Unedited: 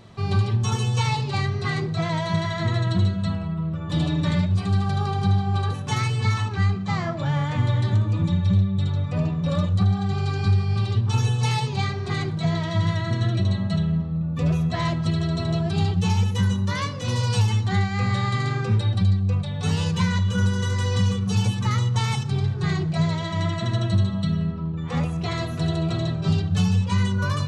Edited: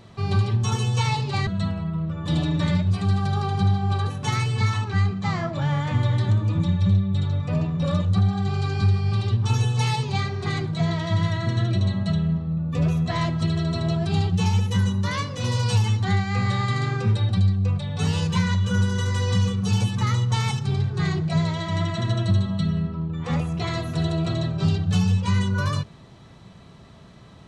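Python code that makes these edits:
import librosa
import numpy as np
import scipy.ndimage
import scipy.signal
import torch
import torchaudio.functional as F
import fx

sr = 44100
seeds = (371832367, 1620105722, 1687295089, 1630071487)

y = fx.edit(x, sr, fx.cut(start_s=1.47, length_s=1.64), tone=tone)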